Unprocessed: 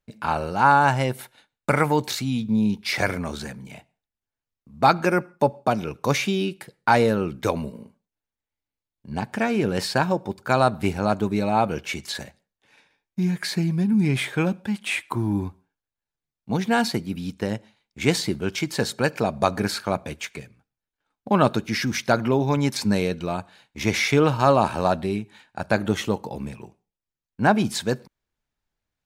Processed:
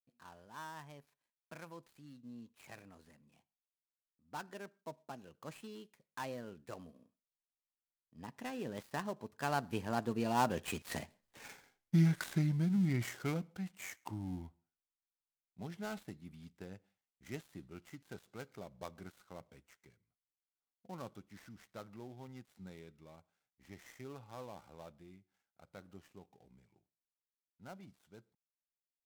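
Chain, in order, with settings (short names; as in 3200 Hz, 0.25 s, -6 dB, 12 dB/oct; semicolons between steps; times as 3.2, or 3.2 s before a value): switching dead time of 0.11 ms; Doppler pass-by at 11.41, 35 m/s, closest 4.4 m; gain +8.5 dB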